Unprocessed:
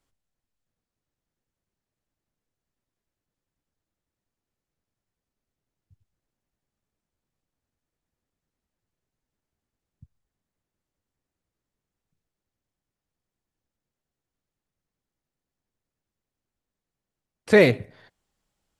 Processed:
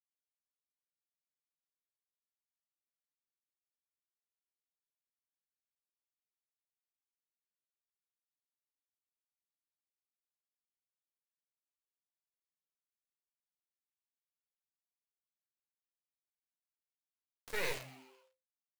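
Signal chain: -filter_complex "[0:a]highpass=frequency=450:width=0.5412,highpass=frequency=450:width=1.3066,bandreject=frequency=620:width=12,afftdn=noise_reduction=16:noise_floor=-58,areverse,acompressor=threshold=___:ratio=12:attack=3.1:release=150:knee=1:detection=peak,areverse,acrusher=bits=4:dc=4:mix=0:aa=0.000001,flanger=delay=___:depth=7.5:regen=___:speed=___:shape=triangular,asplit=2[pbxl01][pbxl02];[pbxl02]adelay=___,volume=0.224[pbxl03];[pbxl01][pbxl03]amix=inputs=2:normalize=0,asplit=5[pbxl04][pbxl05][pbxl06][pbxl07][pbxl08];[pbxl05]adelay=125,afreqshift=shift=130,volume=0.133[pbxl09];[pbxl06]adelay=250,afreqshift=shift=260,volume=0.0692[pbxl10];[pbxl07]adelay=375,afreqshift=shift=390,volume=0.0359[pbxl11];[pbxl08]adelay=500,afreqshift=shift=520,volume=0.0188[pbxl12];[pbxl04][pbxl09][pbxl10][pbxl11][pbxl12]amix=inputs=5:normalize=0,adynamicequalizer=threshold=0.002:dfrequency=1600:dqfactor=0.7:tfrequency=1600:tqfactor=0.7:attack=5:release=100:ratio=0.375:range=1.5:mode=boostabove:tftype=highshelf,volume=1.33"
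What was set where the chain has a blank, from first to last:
0.0355, 9.7, -43, 1.2, 18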